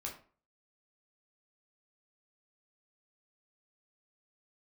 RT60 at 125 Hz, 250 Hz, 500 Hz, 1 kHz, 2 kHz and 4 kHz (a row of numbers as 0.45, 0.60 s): 0.40, 0.45, 0.40, 0.40, 0.35, 0.25 s